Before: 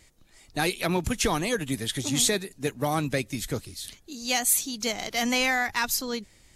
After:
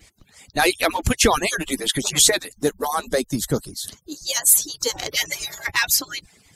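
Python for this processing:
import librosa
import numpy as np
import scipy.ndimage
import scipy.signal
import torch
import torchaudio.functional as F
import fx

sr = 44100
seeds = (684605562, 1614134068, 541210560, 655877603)

y = fx.hpss_only(x, sr, part='percussive')
y = fx.peak_eq(y, sr, hz=2400.0, db=-15.0, octaves=0.62, at=(2.61, 4.97))
y = F.gain(torch.from_numpy(y), 9.0).numpy()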